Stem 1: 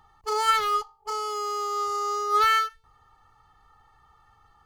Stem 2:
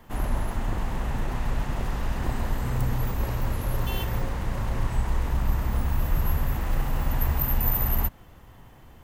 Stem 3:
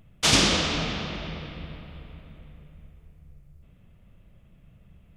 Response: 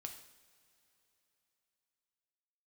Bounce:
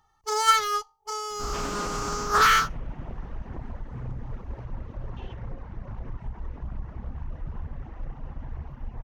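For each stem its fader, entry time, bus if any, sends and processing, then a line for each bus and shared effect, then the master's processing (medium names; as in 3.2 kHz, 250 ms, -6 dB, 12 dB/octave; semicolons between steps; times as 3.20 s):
+3.0 dB, 0.00 s, no bus, no send, treble shelf 6.9 kHz +5.5 dB; band-stop 1.2 kHz, Q 20; upward expansion 1.5:1, over -40 dBFS
-5.5 dB, 1.30 s, bus A, no send, reverb removal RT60 1.6 s; gain riding 2 s
-4.5 dB, 1.30 s, bus A, no send, Chebyshev band-pass 150–3200 Hz, order 5
bus A: 0.0 dB, tape spacing loss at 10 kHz 39 dB; peak limiter -25.5 dBFS, peak gain reduction 8.5 dB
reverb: none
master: peaking EQ 5.9 kHz +9.5 dB 0.32 oct; loudspeaker Doppler distortion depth 0.37 ms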